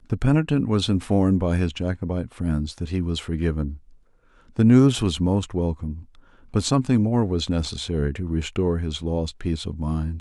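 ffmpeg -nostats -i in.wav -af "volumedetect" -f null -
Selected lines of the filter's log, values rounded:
mean_volume: -22.6 dB
max_volume: -3.3 dB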